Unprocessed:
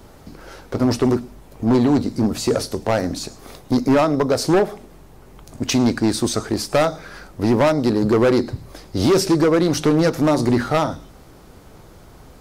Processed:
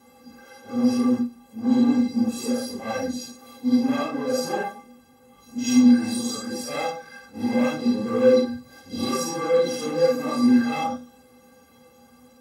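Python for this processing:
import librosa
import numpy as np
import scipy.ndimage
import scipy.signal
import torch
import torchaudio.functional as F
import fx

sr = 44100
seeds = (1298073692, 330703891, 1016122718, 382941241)

y = fx.phase_scramble(x, sr, seeds[0], window_ms=200)
y = scipy.signal.sosfilt(scipy.signal.butter(4, 73.0, 'highpass', fs=sr, output='sos'), y)
y = fx.stiff_resonator(y, sr, f0_hz=240.0, decay_s=0.26, stiffness=0.03)
y = y * 10.0 ** (7.5 / 20.0)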